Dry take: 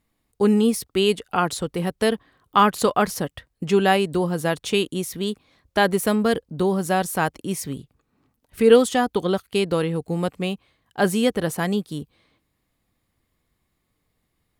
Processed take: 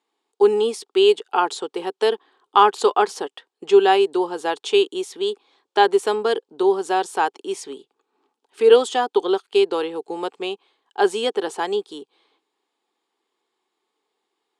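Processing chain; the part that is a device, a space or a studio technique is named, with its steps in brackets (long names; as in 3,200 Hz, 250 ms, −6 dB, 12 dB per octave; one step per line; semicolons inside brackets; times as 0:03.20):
phone speaker on a table (loudspeaker in its box 350–8,200 Hz, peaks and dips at 400 Hz +9 dB, 590 Hz −10 dB, 850 Hz +9 dB, 2,000 Hz −6 dB, 3,300 Hz +4 dB, 5,900 Hz −3 dB)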